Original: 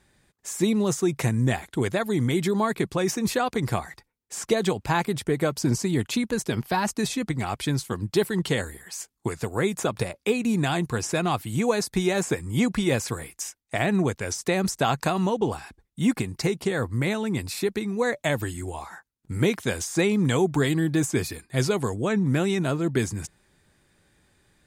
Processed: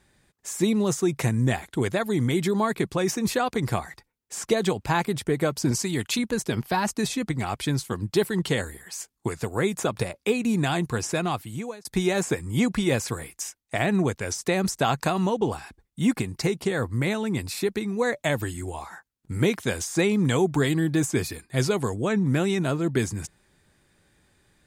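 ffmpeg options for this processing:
ffmpeg -i in.wav -filter_complex "[0:a]asettb=1/sr,asplit=3[link_01][link_02][link_03];[link_01]atrim=end=5.714[link_04];[link_02]atrim=start=5.71:end=6.19,asetpts=PTS-STARTPTS,afade=type=in:duration=0.004:curve=qsin,afade=type=out:start_time=0.476:duration=0.004:curve=qsin,tiltshelf=frequency=970:gain=-4[link_05];[link_03]atrim=start=6.186[link_06];[link_04][link_05]acrossfade=duration=0.004:curve1=hsin:curve2=qsin[link_07];[link_07][link_06]acrossfade=duration=0.004:curve1=qsin:curve2=hsin,asplit=2[link_08][link_09];[link_08]atrim=end=11.85,asetpts=PTS-STARTPTS,afade=type=out:start_time=10.89:duration=0.96:curve=qsin[link_10];[link_09]atrim=start=11.85,asetpts=PTS-STARTPTS,afade=type=in:duration=0.004:curve=hsin[link_11];[link_10][link_11]concat=n=2:v=0:a=1" out.wav

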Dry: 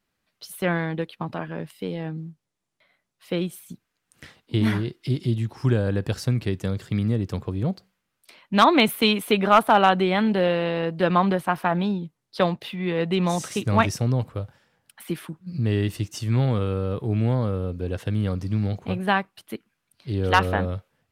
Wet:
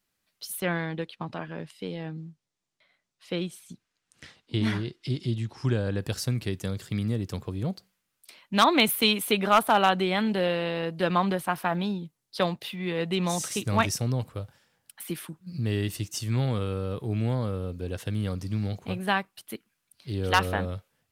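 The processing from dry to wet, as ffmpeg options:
ffmpeg -i in.wav -filter_complex "[0:a]asettb=1/sr,asplit=3[link_01][link_02][link_03];[link_01]atrim=end=0.604[link_04];[link_02]atrim=start=0.6:end=5.99,asetpts=PTS-STARTPTS,afade=type=in:duration=0.004:curve=qsin,afade=type=out:start_time=5.386:duration=0.004:curve=qsin,lowpass=6700[link_05];[link_03]atrim=start=5.986[link_06];[link_04][link_05]acrossfade=duration=0.004:curve1=hsin:curve2=qsin[link_07];[link_07][link_06]acrossfade=duration=0.004:curve1=qsin:curve2=hsin,highshelf=frequency=3800:gain=10.5,volume=-5dB" out.wav

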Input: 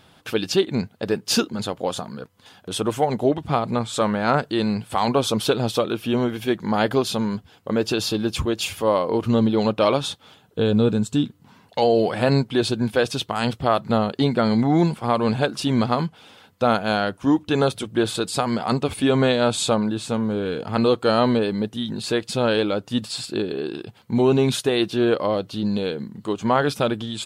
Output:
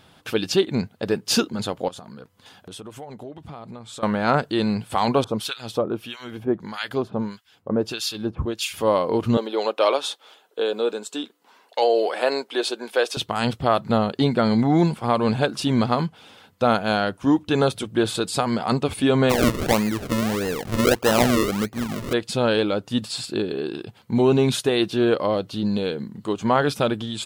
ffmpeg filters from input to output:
ffmpeg -i in.wav -filter_complex "[0:a]asettb=1/sr,asplit=3[link_01][link_02][link_03];[link_01]atrim=end=1.884[link_04];[link_02]atrim=start=1.88:end=4.03,asetpts=PTS-STARTPTS,afade=type=in:duration=0.004:curve=qsin,afade=type=out:start_time=2.146:duration=0.004:curve=qsin,acompressor=threshold=-37dB:ratio=4:attack=3.2:release=140:knee=1:detection=peak[link_05];[link_03]atrim=start=4.026[link_06];[link_04][link_05]acrossfade=duration=0.004:curve1=hsin:curve2=qsin[link_07];[link_07][link_06]acrossfade=duration=0.004:curve1=qsin:curve2=hsin,asettb=1/sr,asplit=3[link_08][link_09][link_10];[link_08]atrim=end=5.244[link_11];[link_09]atrim=start=5.24:end=8.74,asetpts=PTS-STARTPTS,afade=type=in:duration=0.004:curve=qsin,afade=type=out:start_time=3.496:duration=0.004:curve=qsin,acrossover=split=1300[link_12][link_13];[link_12]aeval=exprs='val(0)*(1-1/2+1/2*cos(2*PI*1.6*n/s))':channel_layout=same[link_14];[link_13]aeval=exprs='val(0)*(1-1/2-1/2*cos(2*PI*1.6*n/s))':channel_layout=same[link_15];[link_14][link_15]amix=inputs=2:normalize=0[link_16];[link_10]atrim=start=8.736[link_17];[link_11][link_16]acrossfade=duration=0.004:curve1=hsin:curve2=qsin[link_18];[link_18][link_17]acrossfade=duration=0.004:curve1=qsin:curve2=hsin,asettb=1/sr,asplit=3[link_19][link_20][link_21];[link_19]atrim=end=9.374[link_22];[link_20]atrim=start=9.37:end=13.17,asetpts=PTS-STARTPTS,afade=type=in:duration=0.004:curve=qsin,afade=type=out:start_time=3.796:duration=0.004:curve=qsin,highpass=frequency=380:width=0.5412,highpass=frequency=380:width=1.3066[link_23];[link_21]atrim=start=13.166[link_24];[link_22][link_23]acrossfade=duration=0.004:curve1=hsin:curve2=qsin[link_25];[link_25][link_24]acrossfade=duration=0.004:curve1=qsin:curve2=hsin,asplit=3[link_26][link_27][link_28];[link_26]afade=type=out:start_time=19.29:duration=0.02[link_29];[link_27]acrusher=samples=38:mix=1:aa=0.000001:lfo=1:lforange=38:lforate=1.6,afade=type=in:start_time=19.29:duration=0.02,afade=type=out:start_time=22.12:duration=0.02[link_30];[link_28]afade=type=in:start_time=22.12:duration=0.02[link_31];[link_29][link_30][link_31]amix=inputs=3:normalize=0" out.wav

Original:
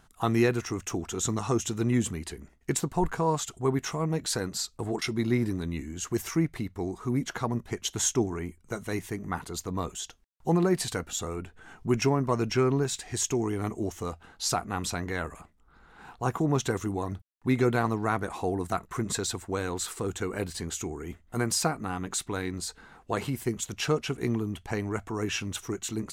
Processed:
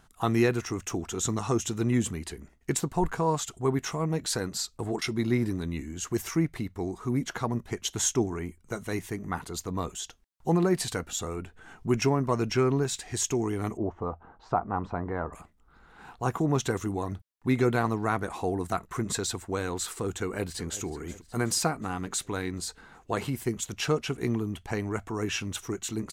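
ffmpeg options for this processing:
ffmpeg -i in.wav -filter_complex "[0:a]asettb=1/sr,asplit=3[link_01][link_02][link_03];[link_01]atrim=end=13.774[link_04];[link_02]atrim=start=13.77:end=15.33,asetpts=PTS-STARTPTS,afade=type=in:duration=0.004:curve=qsin,afade=type=out:start_time=1.556:duration=0.004:curve=qsin,lowpass=frequency=980:width_type=q:width=1.7[link_05];[link_03]atrim=start=15.326[link_06];[link_04][link_05]acrossfade=duration=0.004:curve1=hsin:curve2=qsin[link_07];[link_07][link_06]acrossfade=duration=0.004:curve1=qsin:curve2=hsin,asplit=2[link_08][link_09];[link_09]afade=type=in:start_time=20.21:duration=0.01,afade=type=out:start_time=20.84:duration=0.01,aecho=0:1:370|740|1110|1480|1850|2220:0.16788|0.100728|0.0604369|0.0362622|0.0217573|0.0130544[link_10];[link_08][link_10]amix=inputs=2:normalize=0" out.wav

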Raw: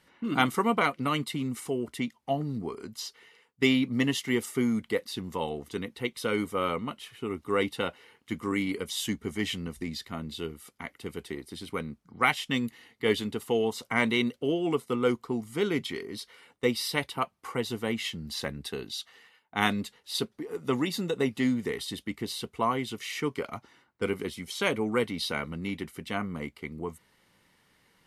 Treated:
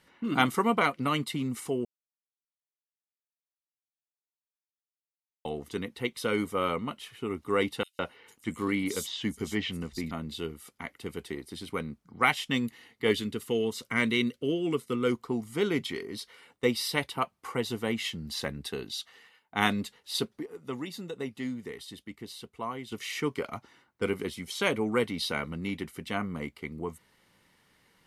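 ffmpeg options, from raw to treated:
ffmpeg -i in.wav -filter_complex "[0:a]asettb=1/sr,asplit=3[link_01][link_02][link_03];[link_01]atrim=end=7.834[link_04];[link_02]atrim=start=7.83:end=10.11,asetpts=PTS-STARTPTS,afade=type=in:duration=0.004:curve=qsin,afade=type=out:start_time=2.276:duration=0.004:curve=qsin,acrossover=split=4800[link_05][link_06];[link_05]adelay=160[link_07];[link_07][link_06]amix=inputs=2:normalize=0,atrim=end_sample=100548[link_08];[link_03]atrim=start=10.106[link_09];[link_04][link_08]acrossfade=duration=0.004:curve1=hsin:curve2=qsin[link_10];[link_10][link_09]acrossfade=duration=0.004:curve1=qsin:curve2=hsin,asettb=1/sr,asplit=3[link_11][link_12][link_13];[link_11]atrim=end=13.114[link_14];[link_12]atrim=start=13.11:end=15.12,asetpts=PTS-STARTPTS,afade=type=in:duration=0.004:curve=qsin,afade=type=out:start_time=2.006:duration=0.004:curve=qsin,equalizer=frequency=780:width=2:gain=-11.5[link_15];[link_13]atrim=start=15.116[link_16];[link_14][link_15]acrossfade=duration=0.004:curve1=hsin:curve2=qsin[link_17];[link_17][link_16]acrossfade=duration=0.004:curve1=qsin:curve2=hsin,asplit=5[link_18][link_19][link_20][link_21][link_22];[link_18]atrim=end=1.85,asetpts=PTS-STARTPTS,afade=type=out:start_time=1.846:duration=0.004:curve=hsin[link_23];[link_19]atrim=start=1.85:end=5.45,asetpts=PTS-STARTPTS,volume=0[link_24];[link_20]atrim=start=5.45:end=20.462,asetpts=PTS-STARTPTS,afade=type=in:duration=0.004:curve=hsin[link_25];[link_21]atrim=start=20.458:end=22.922,asetpts=PTS-STARTPTS,volume=-8.5dB[link_26];[link_22]atrim=start=22.918[link_27];[link_23][link_24][link_25]concat=n=3:v=0:a=1[link_28];[link_28][link_26]acrossfade=duration=0.004:curve1=hsin:curve2=hsin[link_29];[link_29][link_27]acrossfade=duration=0.004:curve1=hsin:curve2=hsin" out.wav

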